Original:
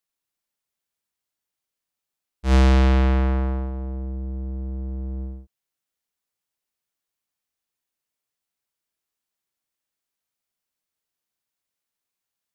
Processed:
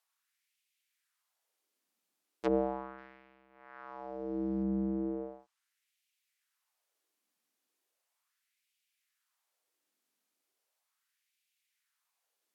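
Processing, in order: low-pass that closes with the level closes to 310 Hz, closed at -20.5 dBFS; 2.98–4.63 s: peaking EQ 5.3 kHz +15 dB 1.1 oct; LFO high-pass sine 0.37 Hz 230–2500 Hz; trim +2 dB

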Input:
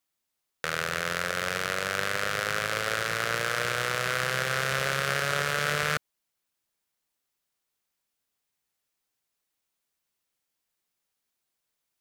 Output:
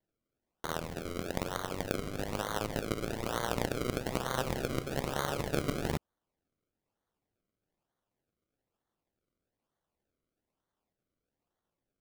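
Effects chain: decimation with a swept rate 34×, swing 100% 1.1 Hz; trim -6 dB

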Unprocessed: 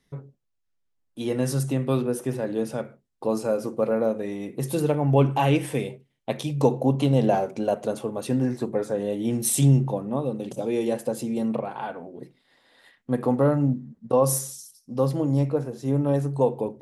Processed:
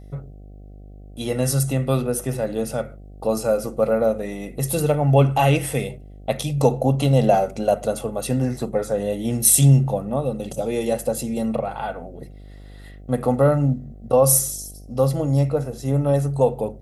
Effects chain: treble shelf 7.7 kHz +9.5 dB; comb 1.5 ms, depth 47%; mains buzz 50 Hz, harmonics 15, -44 dBFS -7 dB/octave; trim +3 dB

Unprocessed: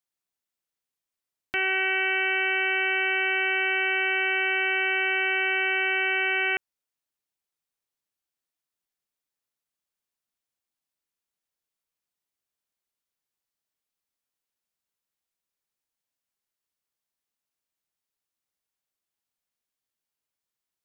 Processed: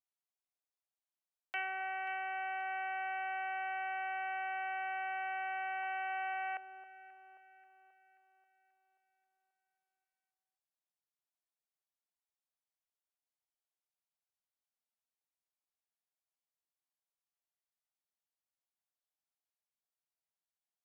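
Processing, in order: low-pass that closes with the level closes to 1.5 kHz, closed at -20 dBFS; ladder high-pass 590 Hz, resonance 50%; 5.83–6.34 s: small resonant body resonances 940/2800 Hz, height 13 dB; on a send: echo whose repeats swap between lows and highs 267 ms, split 1.3 kHz, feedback 68%, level -12 dB; on the sum: trim -3 dB

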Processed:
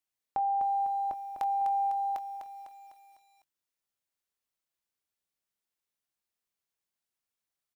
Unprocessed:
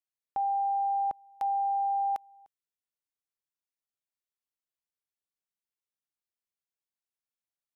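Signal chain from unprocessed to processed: compression 1.5:1, threshold -39 dBFS, peak gain reduction 4.5 dB; doubling 23 ms -13 dB; bit-crushed delay 251 ms, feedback 55%, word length 11-bit, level -7 dB; trim +4 dB

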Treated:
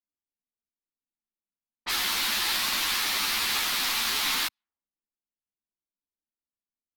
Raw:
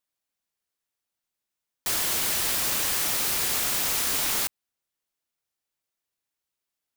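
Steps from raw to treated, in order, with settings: graphic EQ 125/250/500/1000/2000/4000/8000 Hz -10/+5/-7/+6/+5/+9/-5 dB; level-controlled noise filter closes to 350 Hz, open at -22.5 dBFS; three-phase chorus

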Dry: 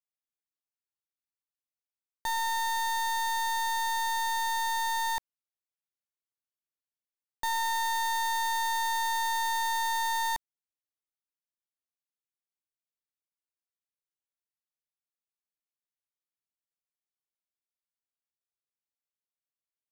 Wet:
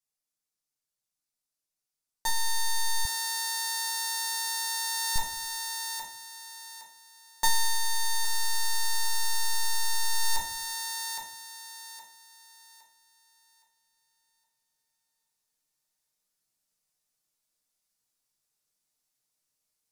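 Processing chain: high-order bell 7.4 kHz +8.5 dB; hum notches 50/100/150/200/250/300/350 Hz; reverberation RT60 0.40 s, pre-delay 7 ms, DRR -1.5 dB; compression 2:1, threshold -23 dBFS, peak gain reduction 3.5 dB; thinning echo 815 ms, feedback 32%, high-pass 230 Hz, level -9 dB; gain riding within 5 dB 0.5 s; 3.05–5.16 s: high-pass 110 Hz 12 dB/octave

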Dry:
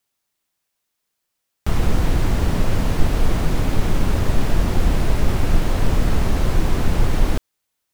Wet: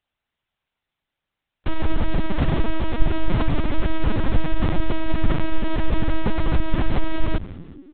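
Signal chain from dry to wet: 1.68–2.83 s: companding laws mixed up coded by A; frequency-shifting echo 185 ms, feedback 56%, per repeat -98 Hz, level -20 dB; LPC vocoder at 8 kHz pitch kept

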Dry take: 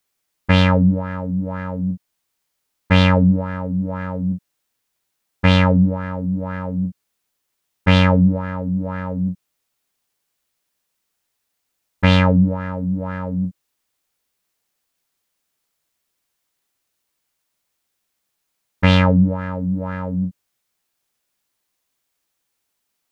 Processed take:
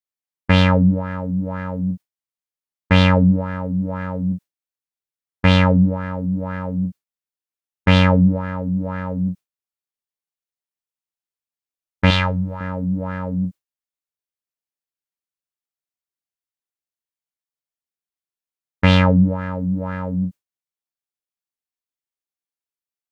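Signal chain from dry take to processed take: gate with hold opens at -18 dBFS; 12.10–12.61 s: graphic EQ 125/250/500/4000 Hz -6/-11/-6/+3 dB

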